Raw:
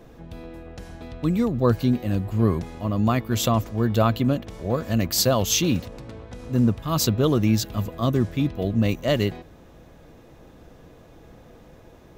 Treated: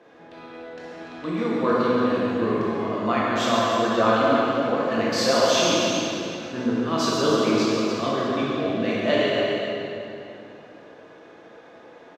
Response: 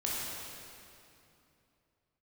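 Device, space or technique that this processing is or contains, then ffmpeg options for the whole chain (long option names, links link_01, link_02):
station announcement: -filter_complex "[0:a]highpass=370,lowpass=4200,equalizer=frequency=1600:width_type=o:width=0.37:gain=5.5,aecho=1:1:139.9|291.5:0.355|0.355[link_01];[1:a]atrim=start_sample=2205[link_02];[link_01][link_02]afir=irnorm=-1:irlink=0,volume=-1dB"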